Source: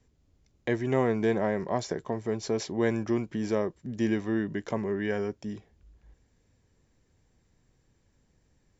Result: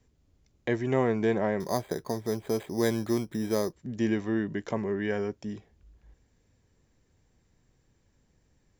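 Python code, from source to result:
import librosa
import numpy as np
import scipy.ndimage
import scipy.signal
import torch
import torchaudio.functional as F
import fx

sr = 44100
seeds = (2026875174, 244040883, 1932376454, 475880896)

y = fx.resample_bad(x, sr, factor=8, down='filtered', up='hold', at=(1.6, 3.73))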